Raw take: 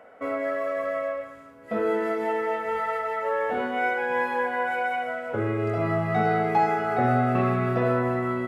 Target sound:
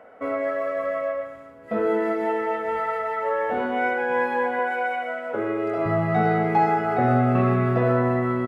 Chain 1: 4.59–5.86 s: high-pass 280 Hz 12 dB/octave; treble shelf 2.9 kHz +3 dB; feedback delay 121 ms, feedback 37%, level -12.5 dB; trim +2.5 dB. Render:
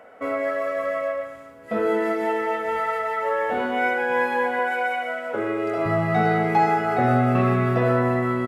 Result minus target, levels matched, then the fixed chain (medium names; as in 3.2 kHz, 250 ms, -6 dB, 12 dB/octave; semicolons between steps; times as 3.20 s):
8 kHz band +8.0 dB
4.59–5.86 s: high-pass 280 Hz 12 dB/octave; treble shelf 2.9 kHz -7 dB; feedback delay 121 ms, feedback 37%, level -12.5 dB; trim +2.5 dB